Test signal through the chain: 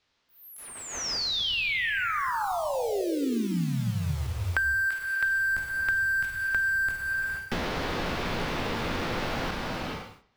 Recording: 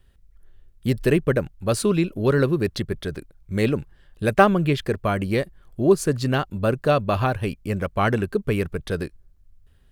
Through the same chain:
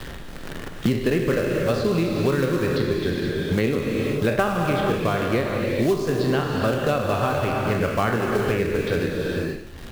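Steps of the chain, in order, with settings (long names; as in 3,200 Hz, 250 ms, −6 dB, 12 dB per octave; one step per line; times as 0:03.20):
peak hold with a decay on every bin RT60 0.46 s
low-pass filter 4,900 Hz 24 dB per octave
in parallel at −3.5 dB: log-companded quantiser 4 bits
on the sum: reverb whose tail is shaped and stops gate 500 ms flat, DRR 2.5 dB
multiband upward and downward compressor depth 100%
level −8.5 dB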